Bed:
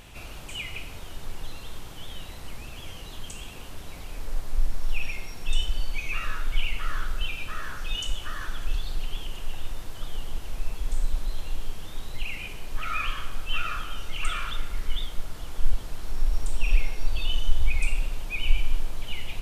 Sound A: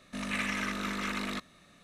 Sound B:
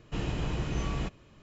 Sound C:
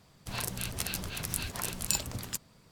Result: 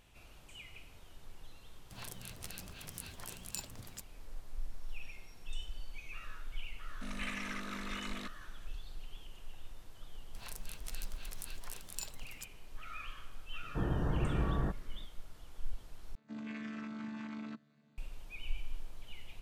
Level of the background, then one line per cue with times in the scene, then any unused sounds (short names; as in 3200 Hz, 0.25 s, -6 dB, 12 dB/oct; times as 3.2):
bed -16.5 dB
1.64 add C -12.5 dB
6.88 add A -8.5 dB
10.08 add C -13 dB + low shelf 320 Hz -10 dB
13.63 add B -1 dB + brick-wall FIR low-pass 1900 Hz
16.15 replace with A -7.5 dB + chord vocoder bare fifth, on D3